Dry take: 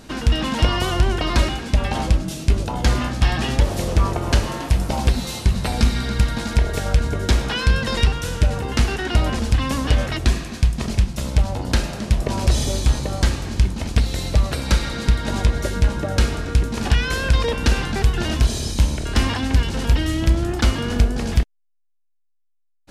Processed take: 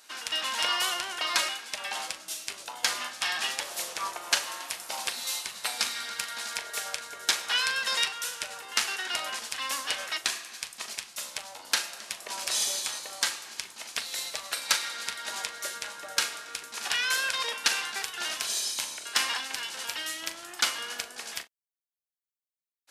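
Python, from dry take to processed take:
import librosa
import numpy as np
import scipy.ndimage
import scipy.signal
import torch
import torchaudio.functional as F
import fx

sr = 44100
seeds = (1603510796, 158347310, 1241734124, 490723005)

y = scipy.signal.sosfilt(scipy.signal.butter(2, 1100.0, 'highpass', fs=sr, output='sos'), x)
y = fx.high_shelf(y, sr, hz=6500.0, db=8.0)
y = fx.doubler(y, sr, ms=40.0, db=-11.0)
y = fx.upward_expand(y, sr, threshold_db=-36.0, expansion=1.5)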